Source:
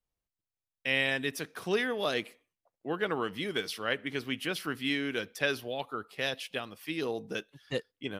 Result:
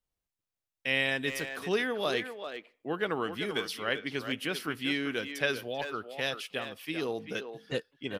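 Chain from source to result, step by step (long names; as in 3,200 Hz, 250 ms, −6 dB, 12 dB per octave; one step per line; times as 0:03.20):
far-end echo of a speakerphone 390 ms, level −8 dB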